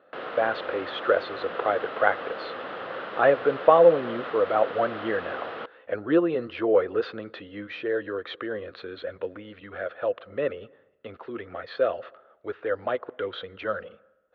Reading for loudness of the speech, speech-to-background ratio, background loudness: -26.5 LUFS, 9.0 dB, -35.5 LUFS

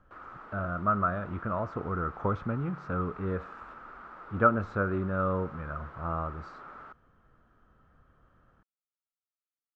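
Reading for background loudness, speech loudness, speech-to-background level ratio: -47.0 LUFS, -31.5 LUFS, 15.5 dB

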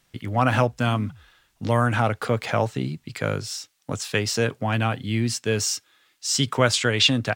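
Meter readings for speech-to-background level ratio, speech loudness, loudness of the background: 19.0 dB, -24.0 LUFS, -43.0 LUFS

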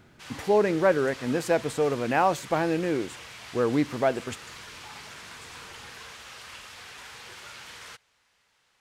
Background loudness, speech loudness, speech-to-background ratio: -42.5 LUFS, -26.0 LUFS, 16.5 dB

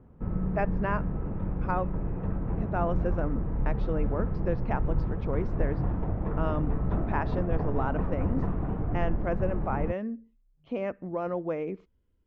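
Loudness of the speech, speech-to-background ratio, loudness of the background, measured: -34.5 LUFS, -2.5 dB, -32.0 LUFS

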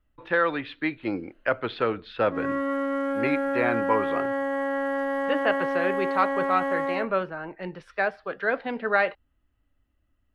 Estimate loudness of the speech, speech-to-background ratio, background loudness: -28.0 LUFS, -0.5 dB, -27.5 LUFS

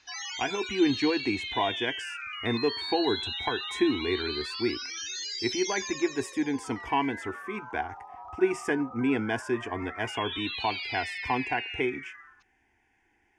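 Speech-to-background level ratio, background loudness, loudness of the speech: 4.5 dB, -35.0 LUFS, -30.5 LUFS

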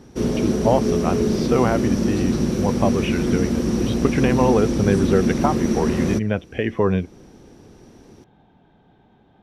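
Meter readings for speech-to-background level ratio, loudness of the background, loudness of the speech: -1.5 dB, -21.5 LUFS, -23.0 LUFS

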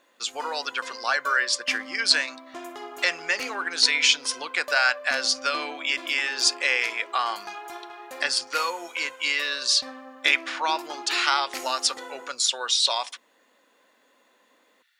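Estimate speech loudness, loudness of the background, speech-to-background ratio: -24.0 LUFS, -39.5 LUFS, 15.5 dB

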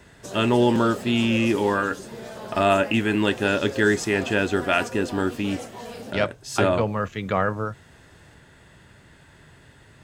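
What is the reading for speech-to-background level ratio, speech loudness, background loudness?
13.5 dB, -23.0 LUFS, -36.5 LUFS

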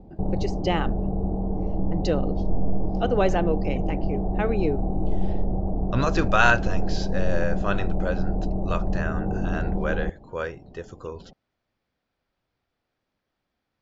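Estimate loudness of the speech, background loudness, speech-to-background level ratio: -28.0 LUFS, -28.5 LUFS, 0.5 dB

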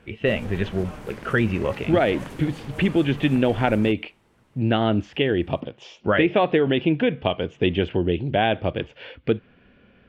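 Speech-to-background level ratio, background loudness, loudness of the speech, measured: 16.5 dB, -39.5 LUFS, -23.0 LUFS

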